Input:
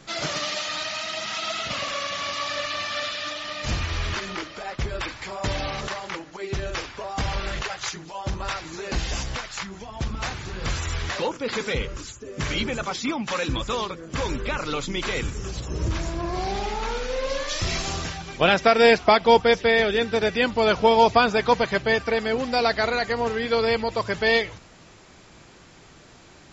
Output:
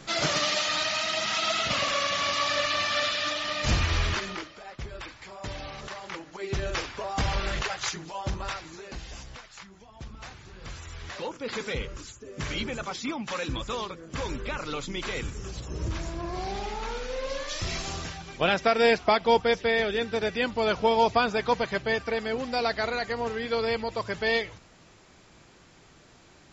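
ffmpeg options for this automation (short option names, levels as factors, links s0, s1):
-af "volume=9.44,afade=t=out:st=3.96:d=0.6:silence=0.251189,afade=t=in:st=5.79:d=0.91:silence=0.334965,afade=t=out:st=8.07:d=0.91:silence=0.223872,afade=t=in:st=10.95:d=0.56:silence=0.398107"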